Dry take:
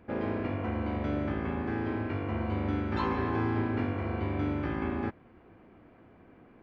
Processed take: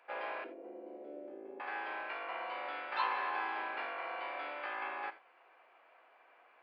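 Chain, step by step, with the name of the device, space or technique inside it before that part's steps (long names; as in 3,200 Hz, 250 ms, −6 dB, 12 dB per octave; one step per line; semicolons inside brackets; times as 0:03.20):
0:00.44–0:01.60: drawn EQ curve 110 Hz 0 dB, 370 Hz +11 dB, 1,100 Hz −29 dB
reverb whose tail is shaped and stops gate 110 ms flat, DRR 11.5 dB
musical greeting card (downsampling to 11,025 Hz; high-pass filter 670 Hz 24 dB per octave; parametric band 2,600 Hz +5 dB 0.26 octaves)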